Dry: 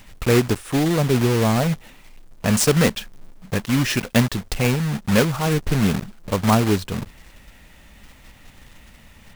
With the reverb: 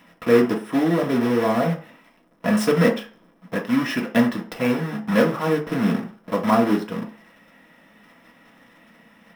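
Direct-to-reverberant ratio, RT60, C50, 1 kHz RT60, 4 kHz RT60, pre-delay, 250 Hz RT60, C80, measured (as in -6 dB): -0.5 dB, 0.45 s, 11.5 dB, 0.45 s, 0.45 s, 3 ms, 0.35 s, 16.5 dB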